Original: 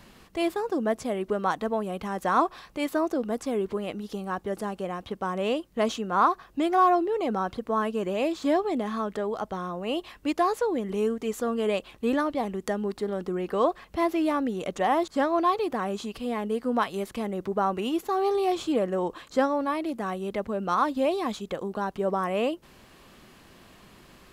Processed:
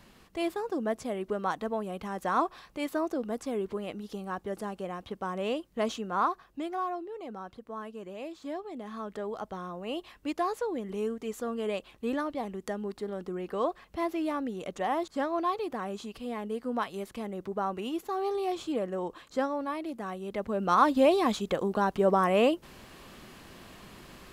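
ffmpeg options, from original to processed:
ffmpeg -i in.wav -af "volume=12dB,afade=type=out:start_time=6.03:duration=0.85:silence=0.354813,afade=type=in:start_time=8.72:duration=0.54:silence=0.421697,afade=type=in:start_time=20.26:duration=0.65:silence=0.354813" out.wav

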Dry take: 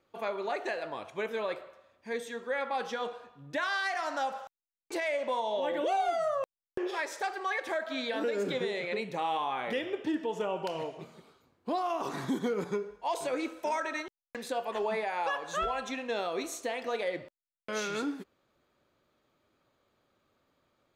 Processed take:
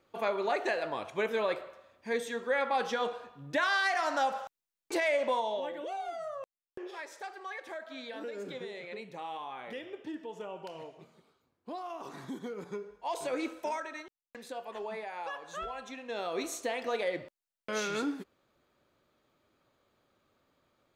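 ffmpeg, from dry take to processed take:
ffmpeg -i in.wav -af "volume=20dB,afade=type=out:start_time=5.23:duration=0.52:silence=0.251189,afade=type=in:start_time=12.6:duration=0.91:silence=0.354813,afade=type=out:start_time=13.51:duration=0.38:silence=0.421697,afade=type=in:start_time=16.03:duration=0.4:silence=0.398107" out.wav

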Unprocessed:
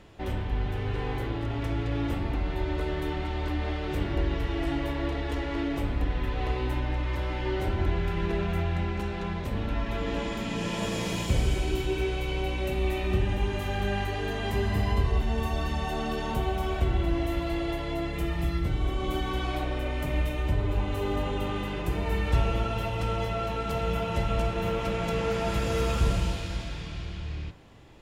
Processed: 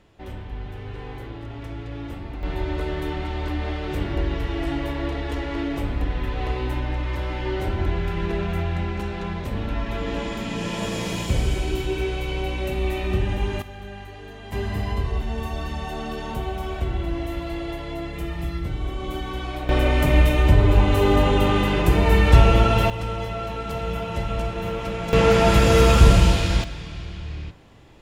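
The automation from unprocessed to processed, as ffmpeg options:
ffmpeg -i in.wav -af "asetnsamples=nb_out_samples=441:pad=0,asendcmd='2.43 volume volume 3dB;13.62 volume volume -9dB;14.52 volume volume 0dB;19.69 volume volume 11.5dB;22.9 volume volume 1dB;25.13 volume volume 12dB;26.64 volume volume 2.5dB',volume=-4.5dB" out.wav

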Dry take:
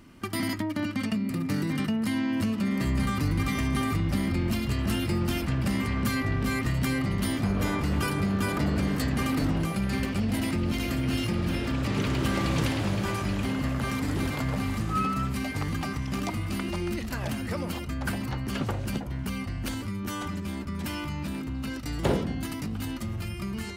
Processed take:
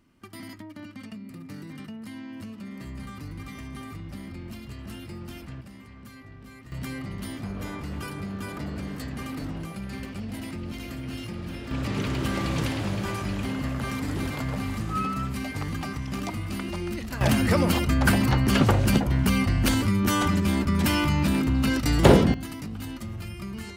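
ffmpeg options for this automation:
ffmpeg -i in.wav -af "asetnsamples=nb_out_samples=441:pad=0,asendcmd='5.61 volume volume -19dB;6.72 volume volume -7.5dB;11.71 volume volume -1dB;17.21 volume volume 10dB;22.34 volume volume -2.5dB',volume=-12dB" out.wav

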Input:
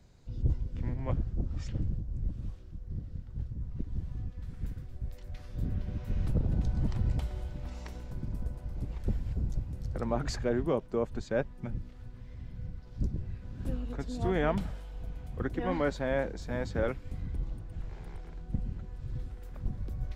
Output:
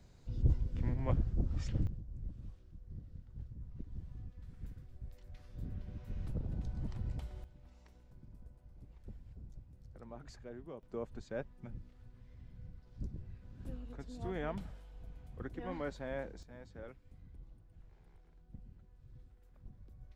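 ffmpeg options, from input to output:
ffmpeg -i in.wav -af "asetnsamples=nb_out_samples=441:pad=0,asendcmd='1.87 volume volume -10dB;7.44 volume volume -19dB;10.83 volume volume -10.5dB;16.43 volume volume -19dB',volume=-1dB" out.wav

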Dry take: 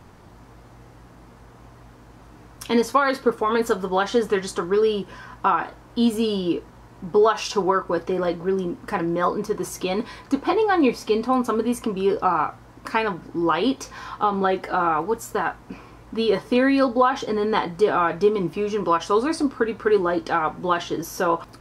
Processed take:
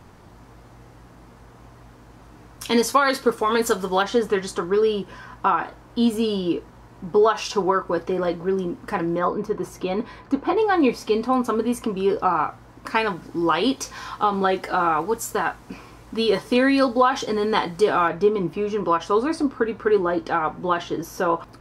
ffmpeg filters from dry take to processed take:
ffmpeg -i in.wav -af "asetnsamples=nb_out_samples=441:pad=0,asendcmd='2.63 equalizer g 9;4.02 equalizer g -1;9.19 equalizer g -10.5;10.57 equalizer g -0.5;12.95 equalizer g 6.5;18.08 equalizer g -5',equalizer=frequency=9900:width_type=o:width=2.7:gain=0.5" out.wav

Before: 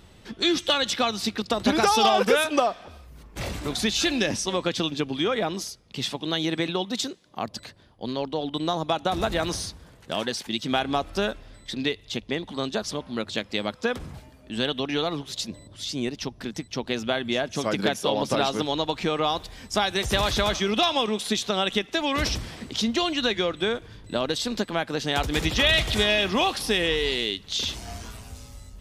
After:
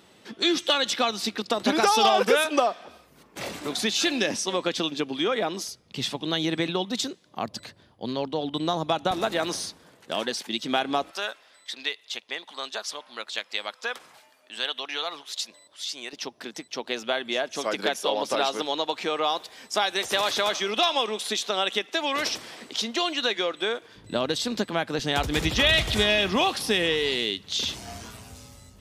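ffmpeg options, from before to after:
ffmpeg -i in.wav -af "asetnsamples=nb_out_samples=441:pad=0,asendcmd='5.68 highpass f 92;9.11 highpass f 230;11.11 highpass f 840;16.13 highpass f 390;23.96 highpass f 97;24.99 highpass f 47;26.36 highpass f 100',highpass=230" out.wav

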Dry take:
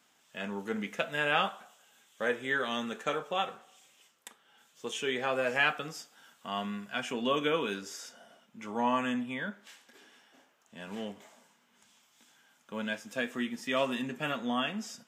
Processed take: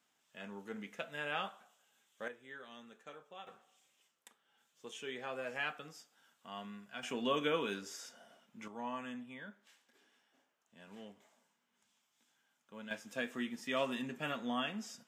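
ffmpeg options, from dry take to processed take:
ffmpeg -i in.wav -af "asetnsamples=nb_out_samples=441:pad=0,asendcmd='2.28 volume volume -20dB;3.47 volume volume -11.5dB;7.03 volume volume -4.5dB;8.68 volume volume -13dB;12.91 volume volume -5.5dB',volume=-10.5dB" out.wav

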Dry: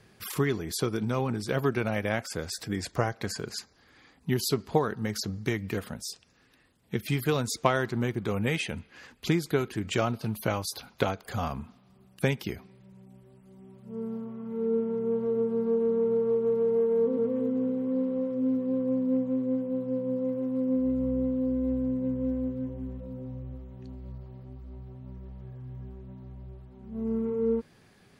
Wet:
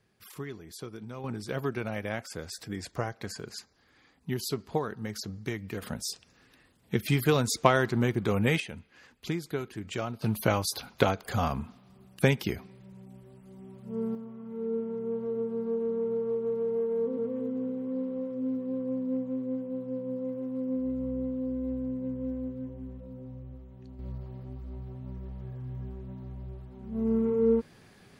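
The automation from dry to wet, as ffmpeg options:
ffmpeg -i in.wav -af "asetnsamples=nb_out_samples=441:pad=0,asendcmd='1.24 volume volume -5dB;5.82 volume volume 2.5dB;8.6 volume volume -6.5dB;10.22 volume volume 3dB;14.15 volume volume -4.5dB;23.99 volume volume 3dB',volume=-12.5dB" out.wav

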